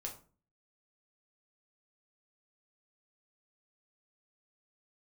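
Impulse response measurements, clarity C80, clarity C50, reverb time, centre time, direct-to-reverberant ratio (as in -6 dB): 15.0 dB, 10.0 dB, 0.40 s, 17 ms, 0.0 dB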